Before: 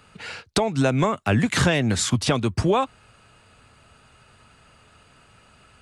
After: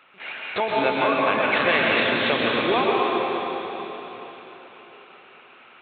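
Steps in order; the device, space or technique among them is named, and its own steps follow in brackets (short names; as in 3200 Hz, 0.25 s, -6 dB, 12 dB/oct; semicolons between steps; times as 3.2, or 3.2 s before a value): 0.9–1.6 low shelf 470 Hz -4.5 dB; talking toy (LPC vocoder at 8 kHz pitch kept; HPF 380 Hz 12 dB/oct; bell 2300 Hz +6 dB 0.27 oct); plate-style reverb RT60 4 s, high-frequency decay 1×, pre-delay 0.105 s, DRR -4.5 dB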